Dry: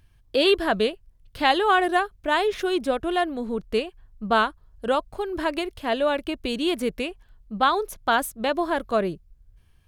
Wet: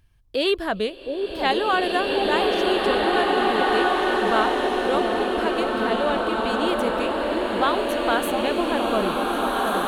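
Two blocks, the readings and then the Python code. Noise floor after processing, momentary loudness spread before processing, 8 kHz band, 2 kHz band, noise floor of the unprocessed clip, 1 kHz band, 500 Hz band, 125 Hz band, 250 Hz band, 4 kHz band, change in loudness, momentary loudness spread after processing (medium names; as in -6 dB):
-37 dBFS, 10 LU, +1.0 dB, +2.5 dB, -58 dBFS, +2.5 dB, +3.0 dB, no reading, +3.0 dB, +2.5 dB, +2.5 dB, 4 LU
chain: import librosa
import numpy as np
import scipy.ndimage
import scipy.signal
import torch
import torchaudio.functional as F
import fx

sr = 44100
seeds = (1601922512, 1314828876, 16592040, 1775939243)

y = fx.echo_alternate(x, sr, ms=716, hz=910.0, feedback_pct=50, wet_db=-5)
y = fx.rev_bloom(y, sr, seeds[0], attack_ms=2170, drr_db=-3.0)
y = F.gain(torch.from_numpy(y), -2.5).numpy()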